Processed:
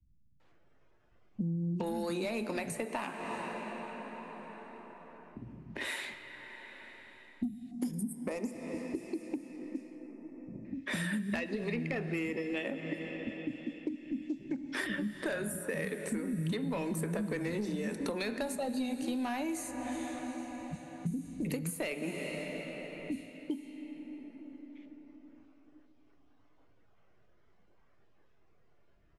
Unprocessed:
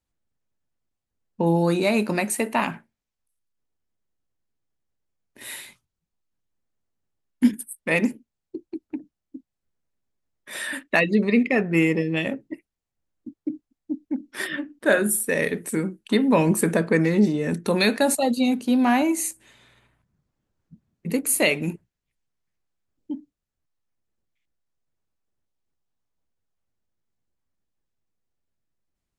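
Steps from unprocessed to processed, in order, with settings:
multiband delay without the direct sound lows, highs 400 ms, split 230 Hz
soft clipping −13 dBFS, distortion −19 dB
dense smooth reverb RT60 3.5 s, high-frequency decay 0.85×, DRR 12.5 dB
downward compressor 5 to 1, threshold −35 dBFS, peak gain reduction 15.5 dB
0:07.71–0:10.65: flat-topped bell 2,500 Hz −12.5 dB
noise reduction from a noise print of the clip's start 7 dB
low-shelf EQ 140 Hz +9.5 dB
low-pass that shuts in the quiet parts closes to 2,500 Hz, open at −31 dBFS
multiband upward and downward compressor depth 70%

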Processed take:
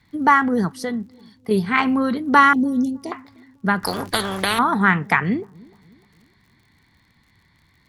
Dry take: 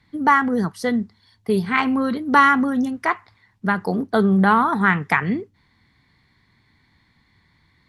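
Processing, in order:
0:00.68–0:01.51: downward compressor 2 to 1, threshold −28 dBFS, peak gain reduction 6.5 dB
0:02.53–0:03.12: Chebyshev band-stop filter 430–4,700 Hz, order 2
surface crackle 57 per second −48 dBFS
on a send: delay with a low-pass on its return 303 ms, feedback 44%, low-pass 480 Hz, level −23 dB
0:03.83–0:04.59: on the sum: every bin compressed towards the loudest bin 4 to 1
level +1 dB

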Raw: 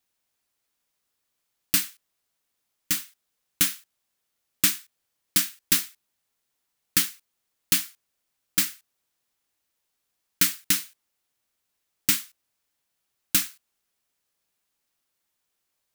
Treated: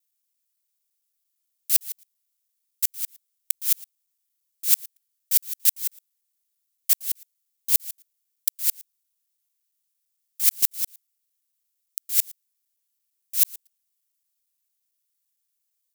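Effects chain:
reversed piece by piece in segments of 113 ms
first difference
level −1 dB

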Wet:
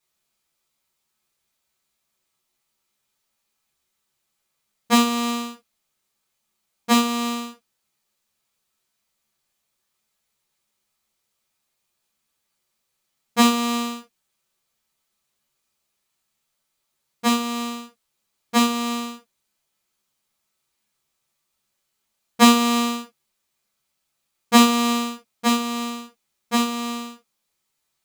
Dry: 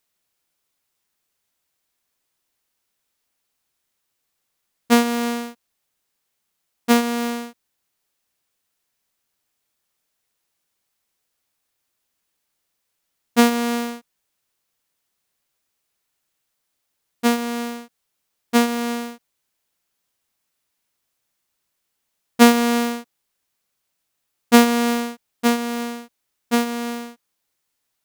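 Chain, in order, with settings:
high-shelf EQ 10,000 Hz −4 dB
convolution reverb, pre-delay 3 ms, DRR −8 dB
level −8 dB

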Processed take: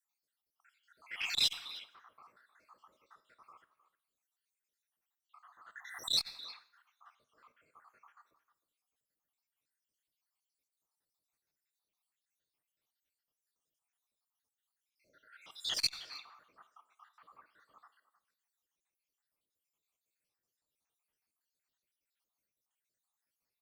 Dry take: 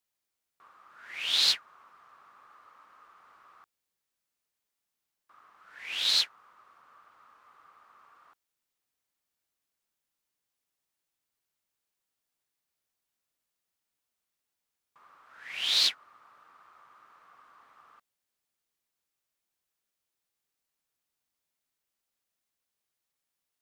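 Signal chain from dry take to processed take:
time-frequency cells dropped at random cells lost 72%
in parallel at −5 dB: hard clipping −24 dBFS, distortion −13 dB
on the sum: harmonic generator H 4 −26 dB, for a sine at −13 dBFS
far-end echo of a speakerphone 310 ms, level −15 dB
dense smooth reverb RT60 0.59 s, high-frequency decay 0.95×, DRR 11.5 dB
saturating transformer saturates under 2,700 Hz
level −3 dB

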